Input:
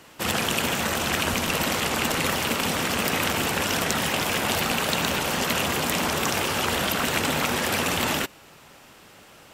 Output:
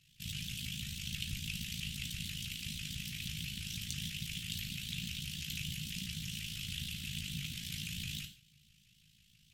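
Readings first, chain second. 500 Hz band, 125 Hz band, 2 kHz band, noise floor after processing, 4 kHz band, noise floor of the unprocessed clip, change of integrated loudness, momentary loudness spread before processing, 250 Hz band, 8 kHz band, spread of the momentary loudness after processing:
below −40 dB, −9.5 dB, −20.0 dB, −67 dBFS, −12.5 dB, −50 dBFS, −16.0 dB, 1 LU, −18.0 dB, −16.0 dB, 1 LU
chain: Chebyshev band-stop filter 140–3,100 Hz, order 3
high-shelf EQ 3,700 Hz −10.5 dB
amplitude modulation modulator 54 Hz, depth 75%
reverb whose tail is shaped and stops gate 170 ms falling, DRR 4.5 dB
pitch modulation by a square or saw wave saw up 6.1 Hz, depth 160 cents
level −4 dB

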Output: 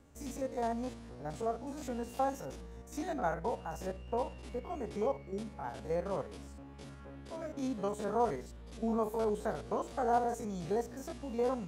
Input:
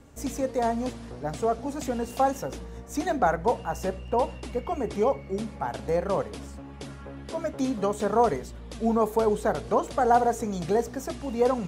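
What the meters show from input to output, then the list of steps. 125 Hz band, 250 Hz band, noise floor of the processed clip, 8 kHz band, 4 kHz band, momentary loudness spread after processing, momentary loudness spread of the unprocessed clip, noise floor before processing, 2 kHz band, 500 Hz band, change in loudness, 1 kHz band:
−8.5 dB, −9.0 dB, −50 dBFS, −10.0 dB, −10.0 dB, 13 LU, 13 LU, −42 dBFS, −10.5 dB, −9.5 dB, −9.5 dB, −10.0 dB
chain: spectrum averaged block by block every 50 ms
level −8 dB

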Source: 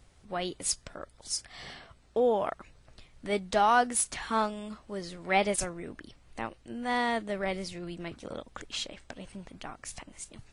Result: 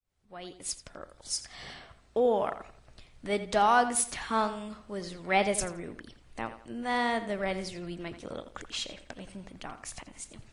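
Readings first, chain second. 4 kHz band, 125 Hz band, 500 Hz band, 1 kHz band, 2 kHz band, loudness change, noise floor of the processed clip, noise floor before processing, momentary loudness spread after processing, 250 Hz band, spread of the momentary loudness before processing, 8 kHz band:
−0.5 dB, 0.0 dB, 0.0 dB, 0.0 dB, 0.0 dB, 0.0 dB, −60 dBFS, −60 dBFS, 19 LU, 0.0 dB, 19 LU, −1.0 dB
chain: fade in at the beginning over 1.31 s
tape delay 85 ms, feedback 36%, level −11 dB, low-pass 4,300 Hz

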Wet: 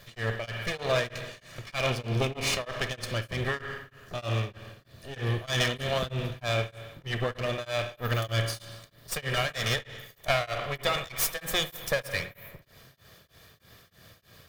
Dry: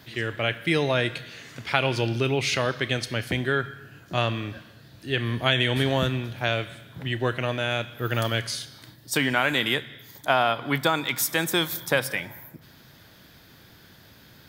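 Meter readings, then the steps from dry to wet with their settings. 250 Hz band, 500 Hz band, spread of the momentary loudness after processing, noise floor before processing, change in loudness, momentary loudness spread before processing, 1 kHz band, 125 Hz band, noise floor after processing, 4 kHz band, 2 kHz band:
−9.5 dB, −4.5 dB, 13 LU, −52 dBFS, −5.0 dB, 15 LU, −6.5 dB, −3.0 dB, −62 dBFS, −4.5 dB, −6.0 dB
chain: lower of the sound and its delayed copy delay 1.7 ms
spring reverb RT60 1.1 s, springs 53 ms, chirp 65 ms, DRR 7.5 dB
tremolo along a rectified sine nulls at 3.2 Hz

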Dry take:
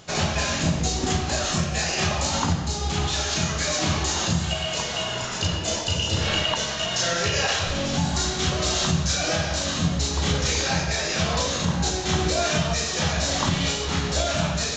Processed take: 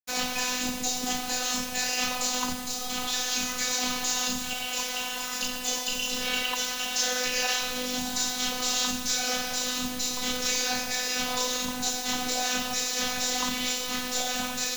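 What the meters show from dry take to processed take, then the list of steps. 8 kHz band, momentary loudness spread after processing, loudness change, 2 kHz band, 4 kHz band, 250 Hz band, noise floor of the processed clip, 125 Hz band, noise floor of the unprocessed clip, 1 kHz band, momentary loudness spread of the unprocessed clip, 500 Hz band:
−0.5 dB, 3 LU, −3.5 dB, −3.5 dB, −3.0 dB, −7.5 dB, −34 dBFS, −24.0 dB, −29 dBFS, −4.5 dB, 3 LU, −9.0 dB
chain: bit-depth reduction 6 bits, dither none
spectral tilt +1.5 dB per octave
phases set to zero 251 Hz
level −3 dB

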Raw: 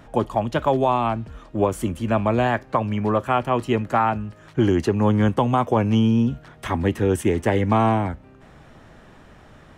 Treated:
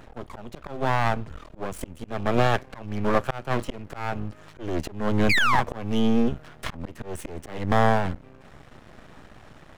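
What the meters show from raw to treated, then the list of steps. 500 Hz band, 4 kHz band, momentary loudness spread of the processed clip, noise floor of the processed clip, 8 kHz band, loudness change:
−6.5 dB, +2.0 dB, 17 LU, −50 dBFS, −2.0 dB, −4.5 dB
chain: volume swells 337 ms
sound drawn into the spectrogram fall, 0:05.29–0:05.61, 770–2,500 Hz −19 dBFS
half-wave rectification
level +3 dB

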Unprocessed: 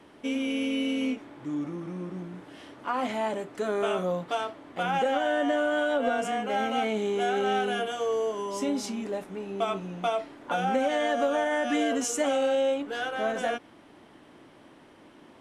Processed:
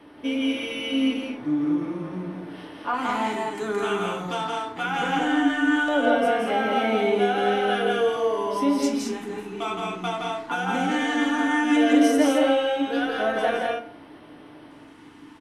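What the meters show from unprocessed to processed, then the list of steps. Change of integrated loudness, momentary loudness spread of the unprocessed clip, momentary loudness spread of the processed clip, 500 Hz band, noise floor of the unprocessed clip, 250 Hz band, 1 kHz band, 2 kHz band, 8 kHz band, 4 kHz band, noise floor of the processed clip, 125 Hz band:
+5.0 dB, 10 LU, 11 LU, +2.5 dB, −54 dBFS, +8.0 dB, +4.0 dB, +6.0 dB, −0.5 dB, +5.5 dB, −47 dBFS, +3.5 dB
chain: auto-filter notch square 0.17 Hz 580–7,100 Hz
loudspeakers that aren't time-aligned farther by 58 metres −3 dB, 73 metres −5 dB
feedback delay network reverb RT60 0.52 s, low-frequency decay 1×, high-frequency decay 0.6×, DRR 4 dB
level +2 dB

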